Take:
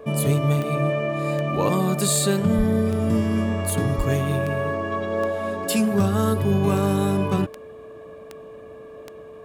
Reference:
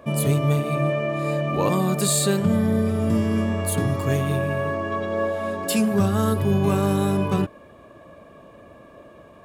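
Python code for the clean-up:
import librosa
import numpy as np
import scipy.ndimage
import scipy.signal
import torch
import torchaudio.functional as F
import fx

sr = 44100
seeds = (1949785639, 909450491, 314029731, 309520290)

y = fx.fix_declick_ar(x, sr, threshold=10.0)
y = fx.notch(y, sr, hz=440.0, q=30.0)
y = fx.highpass(y, sr, hz=140.0, slope=24, at=(2.57, 2.69), fade=0.02)
y = fx.highpass(y, sr, hz=140.0, slope=24, at=(3.97, 4.09), fade=0.02)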